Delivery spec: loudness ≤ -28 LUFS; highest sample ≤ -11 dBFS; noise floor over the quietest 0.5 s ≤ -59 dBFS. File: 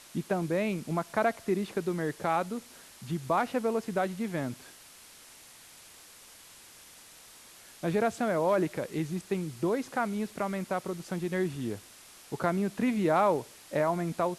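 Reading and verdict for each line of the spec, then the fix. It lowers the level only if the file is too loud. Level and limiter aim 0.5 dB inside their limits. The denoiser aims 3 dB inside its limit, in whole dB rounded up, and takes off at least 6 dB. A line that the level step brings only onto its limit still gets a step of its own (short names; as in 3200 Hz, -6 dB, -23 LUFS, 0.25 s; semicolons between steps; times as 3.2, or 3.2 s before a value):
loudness -31.0 LUFS: OK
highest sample -13.0 dBFS: OK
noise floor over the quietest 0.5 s -53 dBFS: fail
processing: denoiser 9 dB, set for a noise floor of -53 dBFS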